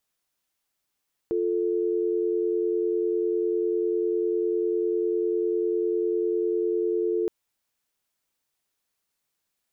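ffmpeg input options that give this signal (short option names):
-f lavfi -i "aevalsrc='0.0562*(sin(2*PI*350*t)+sin(2*PI*440*t))':d=5.97:s=44100"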